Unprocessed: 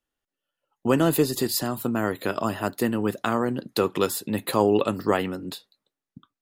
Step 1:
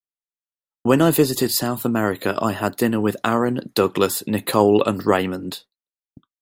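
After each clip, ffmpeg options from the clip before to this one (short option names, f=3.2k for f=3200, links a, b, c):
-af "agate=range=-33dB:threshold=-40dB:ratio=3:detection=peak,volume=5dB"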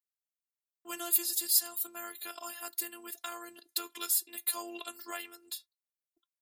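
-af "afftfilt=real='hypot(re,im)*cos(PI*b)':imag='0':win_size=512:overlap=0.75,aderivative,volume=-1.5dB"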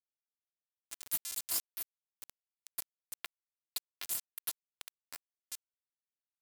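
-af "acompressor=threshold=-40dB:ratio=1.5,acrusher=bits=4:mix=0:aa=0.000001,volume=-1.5dB"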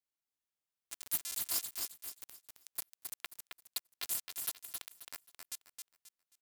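-af "aecho=1:1:267|534|801|1068:0.562|0.163|0.0473|0.0137"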